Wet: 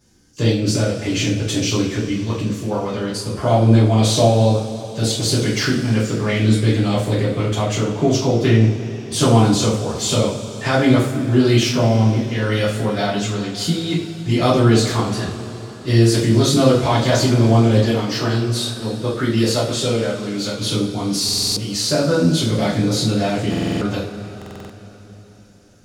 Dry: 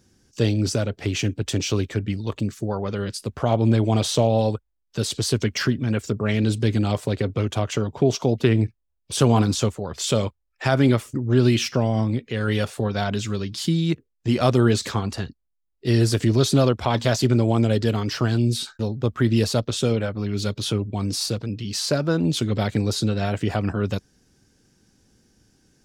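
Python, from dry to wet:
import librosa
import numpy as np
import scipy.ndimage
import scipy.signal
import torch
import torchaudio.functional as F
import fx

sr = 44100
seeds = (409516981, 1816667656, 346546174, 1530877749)

y = fx.low_shelf(x, sr, hz=140.0, db=-10.0, at=(17.82, 20.56))
y = fx.rev_double_slope(y, sr, seeds[0], early_s=0.42, late_s=4.4, knee_db=-19, drr_db=-9.0)
y = fx.buffer_glitch(y, sr, at_s=(21.24, 23.49, 24.37), block=2048, repeats=6)
y = F.gain(torch.from_numpy(y), -4.0).numpy()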